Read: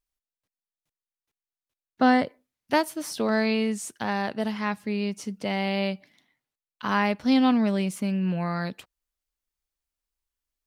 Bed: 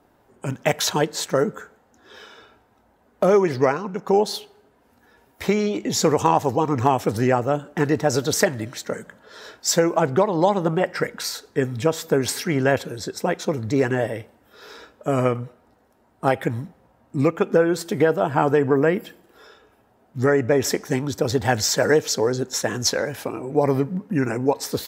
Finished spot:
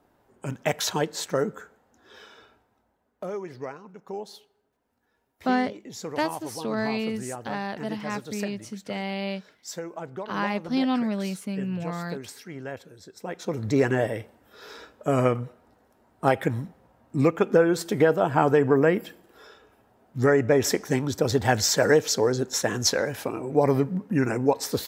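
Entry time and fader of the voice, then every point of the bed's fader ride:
3.45 s, −4.0 dB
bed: 0:02.45 −5 dB
0:03.31 −17 dB
0:13.10 −17 dB
0:13.66 −1.5 dB

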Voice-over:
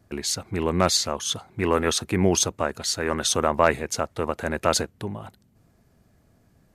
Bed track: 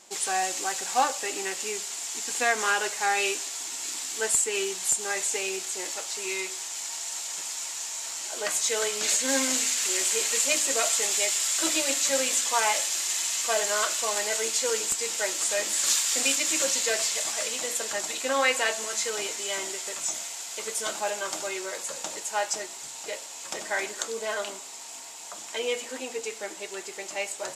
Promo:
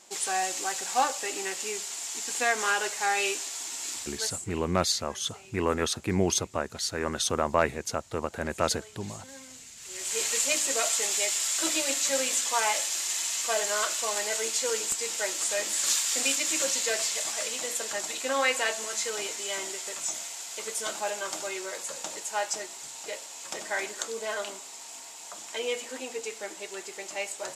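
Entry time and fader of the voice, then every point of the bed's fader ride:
3.95 s, −5.0 dB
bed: 0:03.94 −1.5 dB
0:04.64 −21.5 dB
0:09.74 −21.5 dB
0:10.20 −2 dB

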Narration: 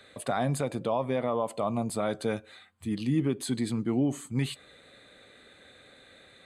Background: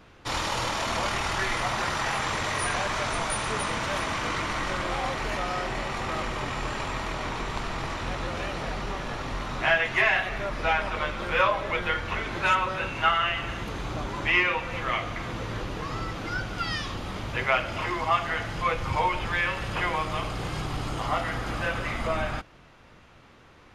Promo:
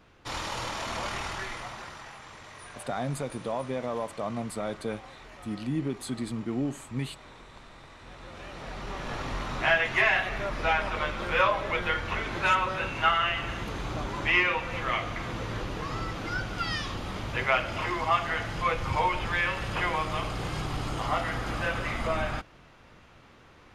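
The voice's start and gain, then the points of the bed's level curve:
2.60 s, −3.5 dB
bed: 0:01.22 −5.5 dB
0:02.18 −18.5 dB
0:07.93 −18.5 dB
0:09.16 −1 dB

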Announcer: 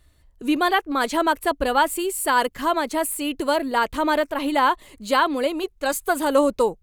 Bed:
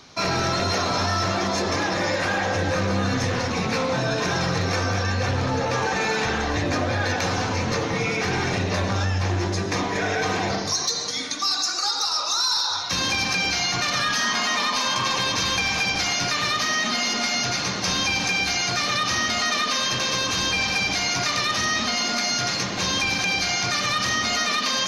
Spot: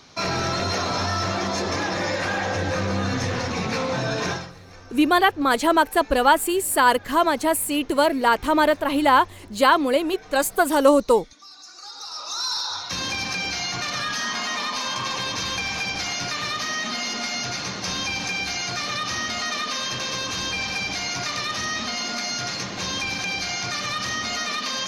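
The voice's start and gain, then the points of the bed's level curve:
4.50 s, +2.5 dB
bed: 0:04.31 −1.5 dB
0:04.55 −22 dB
0:11.53 −22 dB
0:12.46 −4 dB

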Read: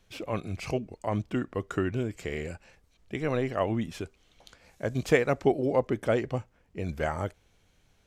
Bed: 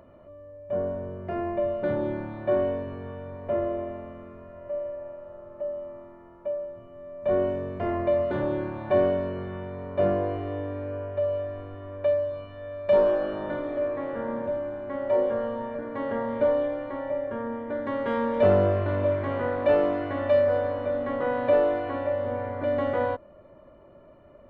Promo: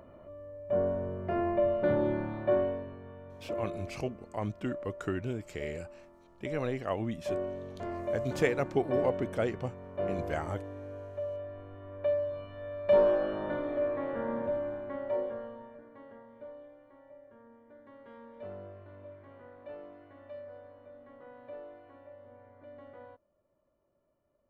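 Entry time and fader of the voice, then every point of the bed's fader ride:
3.30 s, −5.0 dB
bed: 0:02.36 −0.5 dB
0:03.01 −10 dB
0:11.30 −10 dB
0:12.58 −3 dB
0:14.72 −3 dB
0:16.29 −24.5 dB

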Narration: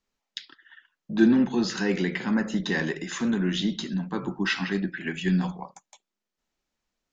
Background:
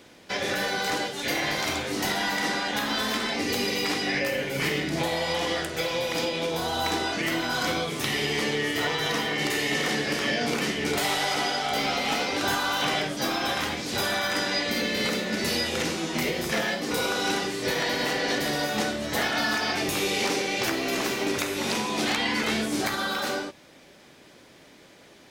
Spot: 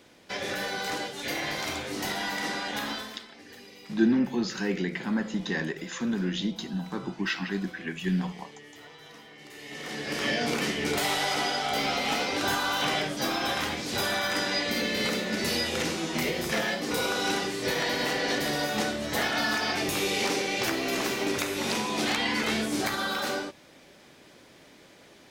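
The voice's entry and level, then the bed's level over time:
2.80 s, −3.5 dB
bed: 0:02.89 −4.5 dB
0:03.28 −22 dB
0:09.44 −22 dB
0:10.25 −1.5 dB

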